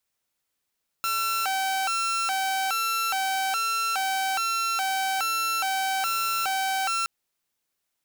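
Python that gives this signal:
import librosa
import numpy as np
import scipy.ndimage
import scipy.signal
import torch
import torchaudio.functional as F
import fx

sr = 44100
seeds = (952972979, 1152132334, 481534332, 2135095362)

y = fx.siren(sr, length_s=6.02, kind='hi-lo', low_hz=769.0, high_hz=1350.0, per_s=1.2, wave='saw', level_db=-21.5)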